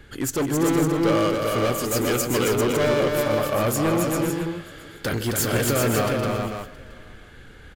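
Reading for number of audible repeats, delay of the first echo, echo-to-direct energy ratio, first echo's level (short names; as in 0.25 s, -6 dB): 9, 0.156 s, 0.0 dB, -18.0 dB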